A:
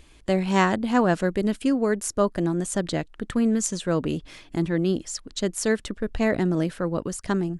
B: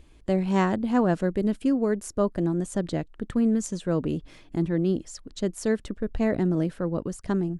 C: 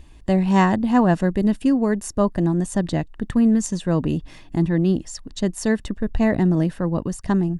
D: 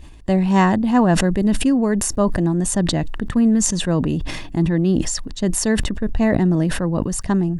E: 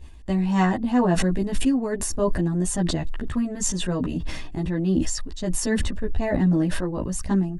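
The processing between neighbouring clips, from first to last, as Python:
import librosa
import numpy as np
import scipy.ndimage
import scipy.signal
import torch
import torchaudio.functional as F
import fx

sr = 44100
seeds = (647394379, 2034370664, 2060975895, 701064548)

y1 = fx.tilt_shelf(x, sr, db=4.5, hz=880.0)
y1 = y1 * 10.0 ** (-4.5 / 20.0)
y2 = y1 + 0.39 * np.pad(y1, (int(1.1 * sr / 1000.0), 0))[:len(y1)]
y2 = y2 * 10.0 ** (5.5 / 20.0)
y3 = fx.sustainer(y2, sr, db_per_s=36.0)
y3 = y3 * 10.0 ** (1.0 / 20.0)
y4 = fx.chorus_voices(y3, sr, voices=6, hz=0.32, base_ms=14, depth_ms=2.6, mix_pct=50)
y4 = y4 * 10.0 ** (-2.5 / 20.0)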